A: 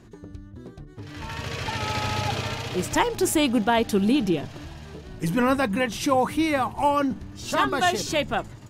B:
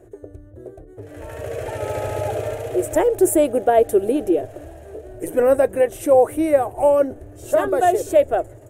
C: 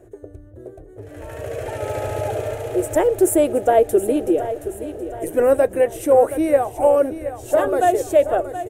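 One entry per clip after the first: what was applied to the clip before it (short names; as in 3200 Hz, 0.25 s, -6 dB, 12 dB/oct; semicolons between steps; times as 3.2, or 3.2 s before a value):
EQ curve 120 Hz 0 dB, 170 Hz -22 dB, 360 Hz +8 dB, 630 Hz +13 dB, 980 Hz -9 dB, 1600 Hz -3 dB, 4800 Hz -18 dB, 8600 Hz +5 dB
feedback echo 0.723 s, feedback 48%, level -12 dB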